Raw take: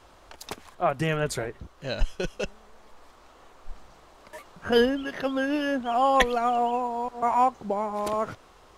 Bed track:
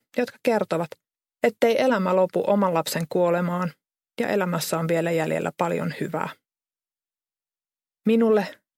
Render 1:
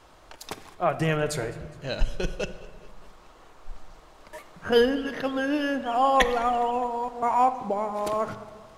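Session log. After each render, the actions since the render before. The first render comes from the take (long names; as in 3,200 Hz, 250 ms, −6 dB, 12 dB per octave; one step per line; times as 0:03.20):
rectangular room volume 1,400 cubic metres, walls mixed, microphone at 0.53 metres
feedback echo with a swinging delay time 207 ms, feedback 56%, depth 80 cents, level −22.5 dB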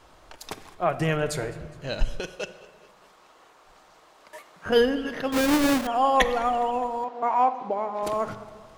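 0:02.20–0:04.66: high-pass filter 480 Hz 6 dB per octave
0:05.32–0:05.87: each half-wave held at its own peak
0:07.04–0:08.03: band-pass filter 250–4,100 Hz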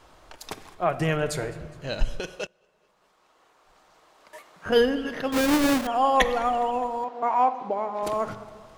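0:02.47–0:04.72: fade in, from −22.5 dB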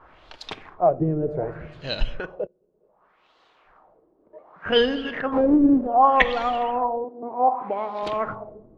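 auto-filter low-pass sine 0.66 Hz 330–4,100 Hz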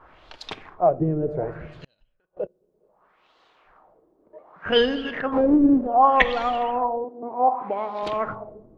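0:01.70–0:02.37: gate with flip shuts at −28 dBFS, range −41 dB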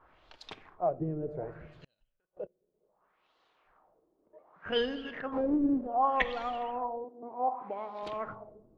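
level −11 dB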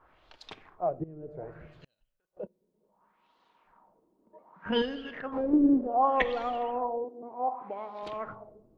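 0:01.04–0:01.61: fade in, from −15.5 dB
0:02.43–0:04.82: hollow resonant body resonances 210/940 Hz, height 13 dB
0:05.53–0:07.22: parametric band 390 Hz +7.5 dB 1.5 octaves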